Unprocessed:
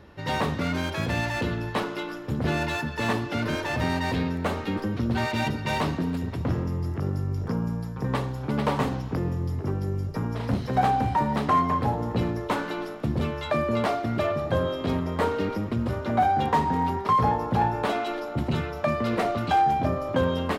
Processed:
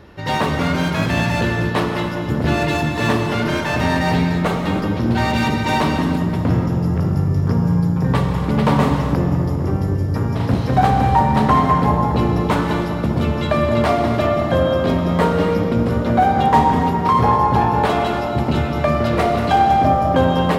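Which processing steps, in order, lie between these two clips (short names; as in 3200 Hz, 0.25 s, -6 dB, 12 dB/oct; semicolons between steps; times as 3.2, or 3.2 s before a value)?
on a send: darkening echo 0.201 s, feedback 84%, low-pass 1300 Hz, level -8.5 dB; on the sum: non-linear reverb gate 0.32 s flat, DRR 4.5 dB; gain +6.5 dB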